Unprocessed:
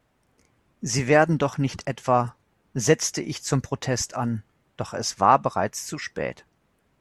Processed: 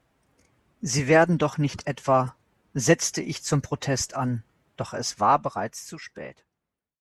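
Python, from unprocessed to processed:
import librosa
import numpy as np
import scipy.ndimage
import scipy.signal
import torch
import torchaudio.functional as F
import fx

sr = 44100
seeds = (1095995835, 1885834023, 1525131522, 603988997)

y = fx.fade_out_tail(x, sr, length_s=2.23)
y = fx.cheby_harmonics(y, sr, harmonics=(6,), levels_db=(-37,), full_scale_db=-3.5)
y = fx.pitch_keep_formants(y, sr, semitones=1.0)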